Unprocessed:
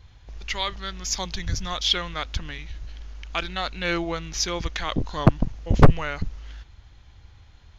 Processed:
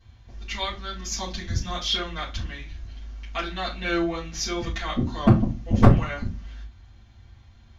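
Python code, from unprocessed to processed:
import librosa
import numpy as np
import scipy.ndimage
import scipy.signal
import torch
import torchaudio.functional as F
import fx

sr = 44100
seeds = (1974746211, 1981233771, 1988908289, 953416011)

y = fx.rev_fdn(x, sr, rt60_s=0.31, lf_ratio=1.55, hf_ratio=0.8, size_ms=26.0, drr_db=-8.5)
y = F.gain(torch.from_numpy(y), -11.0).numpy()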